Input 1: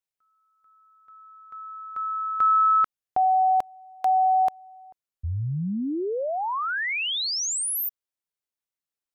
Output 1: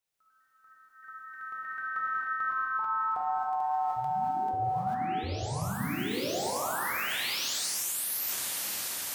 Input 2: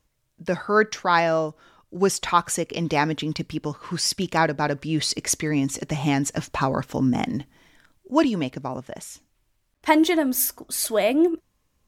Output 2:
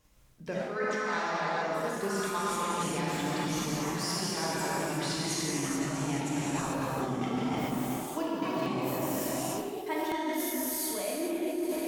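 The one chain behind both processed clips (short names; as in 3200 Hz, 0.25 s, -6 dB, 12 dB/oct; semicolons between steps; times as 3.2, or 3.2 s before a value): diffused feedback echo 0.484 s, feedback 49%, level -13 dB; in parallel at 0 dB: level quantiser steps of 17 dB; on the sum: non-linear reverb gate 0.47 s flat, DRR -7.5 dB; reverse; compressor 12:1, threshold -30 dBFS; reverse; echoes that change speed 0.13 s, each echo +3 st, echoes 2, each echo -6 dB; notches 50/100/150 Hz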